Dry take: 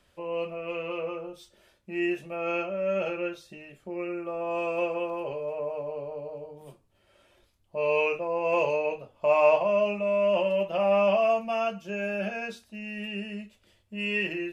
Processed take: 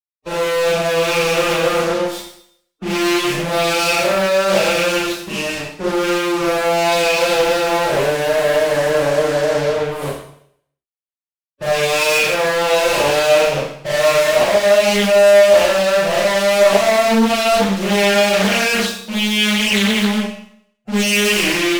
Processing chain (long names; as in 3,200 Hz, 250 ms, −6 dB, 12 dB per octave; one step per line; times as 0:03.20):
dynamic equaliser 2,400 Hz, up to +7 dB, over −50 dBFS, Q 6.7
fuzz pedal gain 47 dB, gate −48 dBFS
phase-vocoder stretch with locked phases 1.5×
four-comb reverb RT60 0.66 s, combs from 28 ms, DRR −7 dB
highs frequency-modulated by the lows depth 0.54 ms
level −8.5 dB